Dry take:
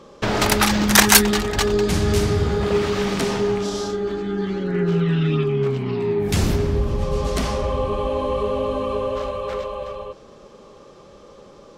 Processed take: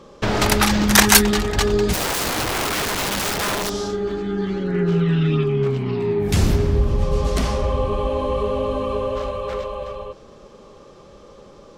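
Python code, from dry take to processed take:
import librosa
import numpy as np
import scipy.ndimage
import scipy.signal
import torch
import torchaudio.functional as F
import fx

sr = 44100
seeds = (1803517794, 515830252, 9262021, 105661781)

y = fx.low_shelf(x, sr, hz=91.0, db=5.5)
y = fx.overflow_wrap(y, sr, gain_db=18.0, at=(1.92, 3.69), fade=0.02)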